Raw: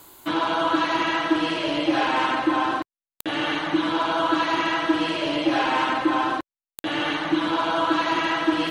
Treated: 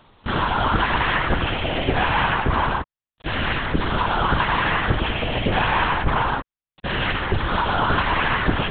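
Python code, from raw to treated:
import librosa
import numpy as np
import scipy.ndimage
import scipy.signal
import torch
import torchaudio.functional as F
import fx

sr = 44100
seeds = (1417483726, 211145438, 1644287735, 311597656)

y = fx.dynamic_eq(x, sr, hz=1800.0, q=0.82, threshold_db=-39.0, ratio=4.0, max_db=5)
y = fx.lpc_vocoder(y, sr, seeds[0], excitation='whisper', order=8)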